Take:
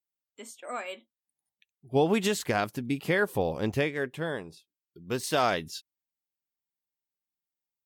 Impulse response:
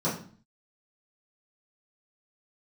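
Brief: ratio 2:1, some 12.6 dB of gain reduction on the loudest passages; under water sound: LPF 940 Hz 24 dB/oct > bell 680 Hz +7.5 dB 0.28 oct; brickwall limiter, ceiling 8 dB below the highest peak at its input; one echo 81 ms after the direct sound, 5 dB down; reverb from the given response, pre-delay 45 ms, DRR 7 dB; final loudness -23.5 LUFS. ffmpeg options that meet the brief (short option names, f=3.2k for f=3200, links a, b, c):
-filter_complex "[0:a]acompressor=threshold=-44dB:ratio=2,alimiter=level_in=7dB:limit=-24dB:level=0:latency=1,volume=-7dB,aecho=1:1:81:0.562,asplit=2[a][b];[1:a]atrim=start_sample=2205,adelay=45[c];[b][c]afir=irnorm=-1:irlink=0,volume=-17.5dB[d];[a][d]amix=inputs=2:normalize=0,lowpass=f=940:w=0.5412,lowpass=f=940:w=1.3066,equalizer=f=680:t=o:w=0.28:g=7.5,volume=16.5dB"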